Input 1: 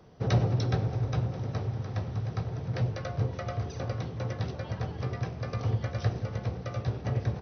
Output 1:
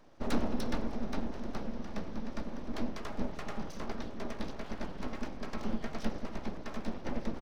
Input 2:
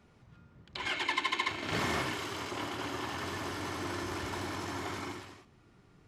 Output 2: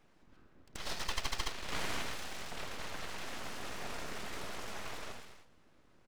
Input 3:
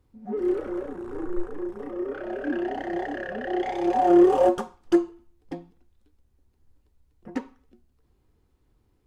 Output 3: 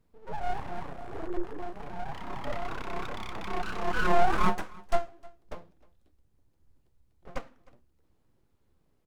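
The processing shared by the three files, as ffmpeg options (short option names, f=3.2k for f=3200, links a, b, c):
-filter_complex "[0:a]aeval=exprs='abs(val(0))':c=same,asplit=2[a][b];[b]aecho=0:1:308:0.0668[c];[a][c]amix=inputs=2:normalize=0,volume=-2.5dB"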